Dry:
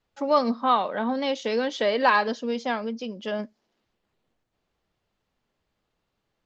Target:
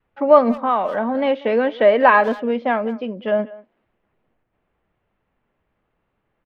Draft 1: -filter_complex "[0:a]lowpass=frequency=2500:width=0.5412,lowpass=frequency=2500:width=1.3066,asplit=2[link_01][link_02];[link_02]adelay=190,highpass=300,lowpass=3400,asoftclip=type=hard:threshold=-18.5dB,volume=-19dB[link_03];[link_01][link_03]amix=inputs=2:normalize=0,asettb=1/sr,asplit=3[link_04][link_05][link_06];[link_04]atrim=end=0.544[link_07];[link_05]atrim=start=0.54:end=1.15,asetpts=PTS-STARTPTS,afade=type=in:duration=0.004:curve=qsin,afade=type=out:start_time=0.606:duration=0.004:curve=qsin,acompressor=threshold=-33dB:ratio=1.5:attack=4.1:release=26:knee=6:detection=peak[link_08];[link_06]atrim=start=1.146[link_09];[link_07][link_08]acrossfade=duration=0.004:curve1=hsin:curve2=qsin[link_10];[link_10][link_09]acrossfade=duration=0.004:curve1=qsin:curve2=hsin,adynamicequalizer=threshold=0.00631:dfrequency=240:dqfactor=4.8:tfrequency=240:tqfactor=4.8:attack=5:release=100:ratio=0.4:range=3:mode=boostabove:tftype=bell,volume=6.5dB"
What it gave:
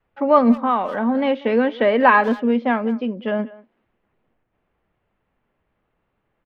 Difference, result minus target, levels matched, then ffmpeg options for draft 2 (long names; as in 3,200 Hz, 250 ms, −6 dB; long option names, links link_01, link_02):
250 Hz band +5.0 dB
-filter_complex "[0:a]lowpass=frequency=2500:width=0.5412,lowpass=frequency=2500:width=1.3066,asplit=2[link_01][link_02];[link_02]adelay=190,highpass=300,lowpass=3400,asoftclip=type=hard:threshold=-18.5dB,volume=-19dB[link_03];[link_01][link_03]amix=inputs=2:normalize=0,asettb=1/sr,asplit=3[link_04][link_05][link_06];[link_04]atrim=end=0.544[link_07];[link_05]atrim=start=0.54:end=1.15,asetpts=PTS-STARTPTS,afade=type=in:duration=0.004:curve=qsin,afade=type=out:start_time=0.606:duration=0.004:curve=qsin,acompressor=threshold=-33dB:ratio=1.5:attack=4.1:release=26:knee=6:detection=peak[link_08];[link_06]atrim=start=1.146[link_09];[link_07][link_08]acrossfade=duration=0.004:curve1=hsin:curve2=qsin[link_10];[link_10][link_09]acrossfade=duration=0.004:curve1=qsin:curve2=hsin,adynamicequalizer=threshold=0.00631:dfrequency=630:dqfactor=4.8:tfrequency=630:tqfactor=4.8:attack=5:release=100:ratio=0.4:range=3:mode=boostabove:tftype=bell,volume=6.5dB"